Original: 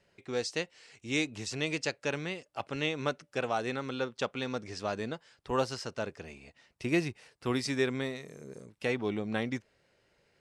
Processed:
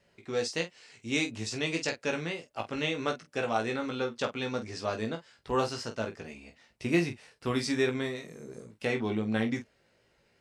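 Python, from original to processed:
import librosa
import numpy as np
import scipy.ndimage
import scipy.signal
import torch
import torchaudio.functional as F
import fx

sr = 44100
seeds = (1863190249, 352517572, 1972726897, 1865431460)

y = fx.peak_eq(x, sr, hz=240.0, db=4.5, octaves=0.22)
y = fx.wow_flutter(y, sr, seeds[0], rate_hz=2.1, depth_cents=21.0)
y = fx.room_early_taps(y, sr, ms=(18, 47), db=(-4.5, -10.0))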